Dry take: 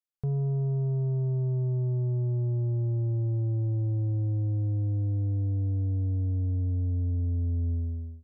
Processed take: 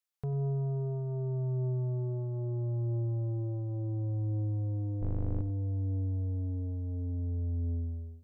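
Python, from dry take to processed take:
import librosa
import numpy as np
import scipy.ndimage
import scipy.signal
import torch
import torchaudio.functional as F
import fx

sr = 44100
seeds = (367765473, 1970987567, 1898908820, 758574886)

y = fx.octave_divider(x, sr, octaves=2, level_db=1.0, at=(5.01, 5.41))
y = fx.low_shelf(y, sr, hz=410.0, db=-10.0)
y = y + 10.0 ** (-13.5 / 20.0) * np.pad(y, (int(94 * sr / 1000.0), 0))[:len(y)]
y = F.gain(torch.from_numpy(y), 3.5).numpy()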